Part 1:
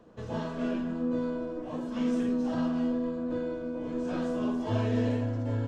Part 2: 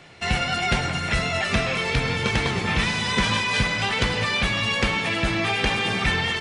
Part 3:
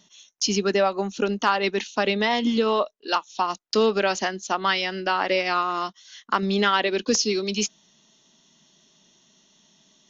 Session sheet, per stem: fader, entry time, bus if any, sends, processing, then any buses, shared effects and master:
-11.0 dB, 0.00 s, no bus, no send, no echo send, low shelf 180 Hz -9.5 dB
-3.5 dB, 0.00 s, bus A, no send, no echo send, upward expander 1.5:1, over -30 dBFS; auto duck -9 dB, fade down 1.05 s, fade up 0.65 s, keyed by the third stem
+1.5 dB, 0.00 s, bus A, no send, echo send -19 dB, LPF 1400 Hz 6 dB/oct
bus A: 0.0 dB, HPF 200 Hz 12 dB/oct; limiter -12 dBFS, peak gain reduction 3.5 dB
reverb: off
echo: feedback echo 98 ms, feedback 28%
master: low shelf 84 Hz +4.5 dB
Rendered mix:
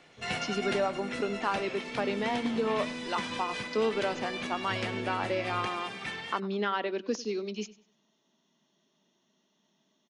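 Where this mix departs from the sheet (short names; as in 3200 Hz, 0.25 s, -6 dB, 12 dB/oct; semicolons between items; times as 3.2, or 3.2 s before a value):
stem 1: missing low shelf 180 Hz -9.5 dB; stem 3 +1.5 dB -> -7.0 dB; master: missing low shelf 84 Hz +4.5 dB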